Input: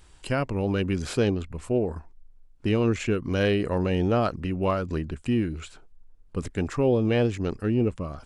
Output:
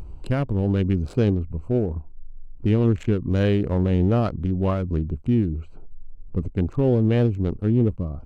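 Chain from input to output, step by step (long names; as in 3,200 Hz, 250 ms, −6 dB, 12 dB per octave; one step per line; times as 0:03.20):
adaptive Wiener filter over 25 samples
upward compression, threshold −33 dBFS
low-shelf EQ 290 Hz +11 dB
level −2.5 dB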